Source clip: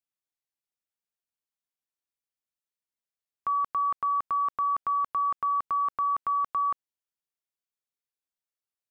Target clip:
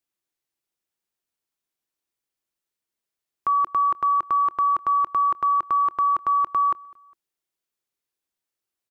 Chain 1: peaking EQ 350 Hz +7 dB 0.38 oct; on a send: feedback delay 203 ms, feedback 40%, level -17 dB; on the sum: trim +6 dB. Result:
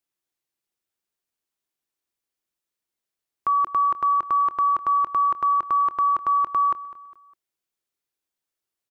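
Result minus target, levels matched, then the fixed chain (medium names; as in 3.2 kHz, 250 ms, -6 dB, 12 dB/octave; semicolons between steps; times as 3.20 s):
echo-to-direct +7.5 dB
peaking EQ 350 Hz +7 dB 0.38 oct; on a send: feedback delay 203 ms, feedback 40%, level -24.5 dB; on the sum: trim +6 dB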